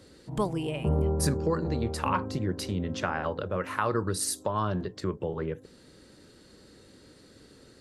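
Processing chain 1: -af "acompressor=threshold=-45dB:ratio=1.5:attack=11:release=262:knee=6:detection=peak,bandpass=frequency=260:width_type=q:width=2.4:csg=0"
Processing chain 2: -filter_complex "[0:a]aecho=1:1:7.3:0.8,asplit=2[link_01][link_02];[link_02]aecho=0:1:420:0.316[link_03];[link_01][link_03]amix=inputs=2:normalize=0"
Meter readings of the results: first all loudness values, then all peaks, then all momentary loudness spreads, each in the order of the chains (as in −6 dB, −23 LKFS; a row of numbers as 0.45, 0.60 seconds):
−45.5, −28.0 LKFS; −29.5, −10.5 dBFS; 18, 9 LU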